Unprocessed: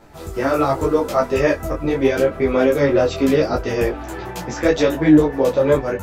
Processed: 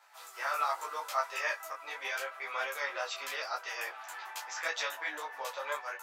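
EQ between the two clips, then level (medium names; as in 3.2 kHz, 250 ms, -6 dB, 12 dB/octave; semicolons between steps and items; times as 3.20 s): high-pass 920 Hz 24 dB/octave; -7.5 dB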